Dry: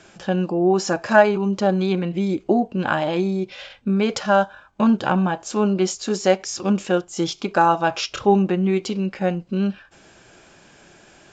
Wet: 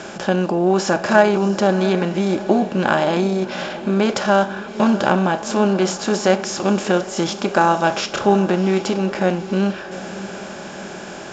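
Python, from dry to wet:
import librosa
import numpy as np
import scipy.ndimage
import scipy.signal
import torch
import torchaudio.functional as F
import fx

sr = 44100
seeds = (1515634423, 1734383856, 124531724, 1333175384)

y = fx.bin_compress(x, sr, power=0.6)
y = fx.echo_diffused(y, sr, ms=700, feedback_pct=47, wet_db=-14)
y = y * 10.0 ** (-1.0 / 20.0)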